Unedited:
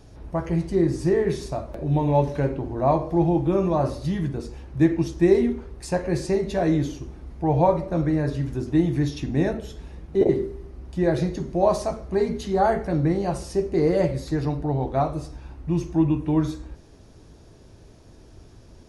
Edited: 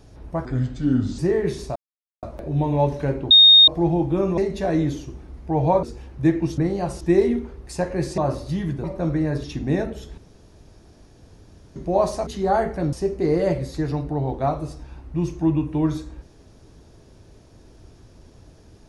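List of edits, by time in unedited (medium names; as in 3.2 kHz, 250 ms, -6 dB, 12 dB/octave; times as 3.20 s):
0.45–1.01 s: speed 76%
1.58 s: insert silence 0.47 s
2.66–3.03 s: bleep 3.7 kHz -7 dBFS
3.73–4.39 s: swap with 6.31–7.76 s
8.36–9.11 s: delete
9.85–11.43 s: room tone
11.94–12.37 s: delete
13.03–13.46 s: move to 5.14 s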